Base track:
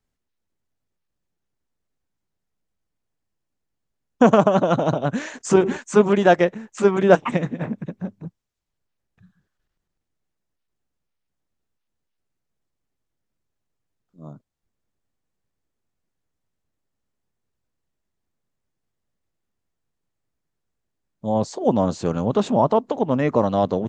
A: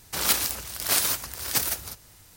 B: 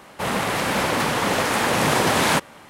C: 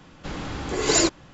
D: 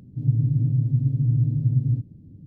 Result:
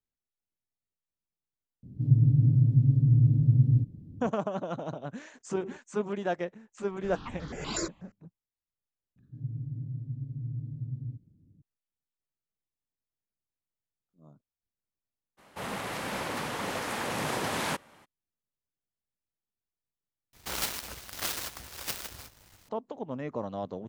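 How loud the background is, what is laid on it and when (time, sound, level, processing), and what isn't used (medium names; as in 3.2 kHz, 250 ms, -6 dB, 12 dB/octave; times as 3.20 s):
base track -16 dB
1.83 s: add D -0.5 dB
6.79 s: add C -10 dB + stepped phaser 8.2 Hz 790–2500 Hz
9.16 s: add D -15.5 dB
15.37 s: add B -12.5 dB, fades 0.02 s
20.33 s: replace with A -2.5 dB + dead-time distortion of 0.078 ms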